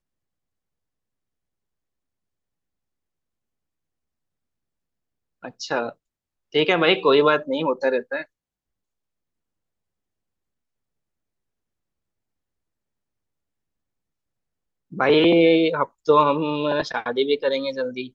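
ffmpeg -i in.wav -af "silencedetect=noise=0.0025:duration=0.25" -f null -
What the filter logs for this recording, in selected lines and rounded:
silence_start: 0.00
silence_end: 5.43 | silence_duration: 5.43
silence_start: 5.94
silence_end: 6.52 | silence_duration: 0.59
silence_start: 8.25
silence_end: 14.91 | silence_duration: 6.66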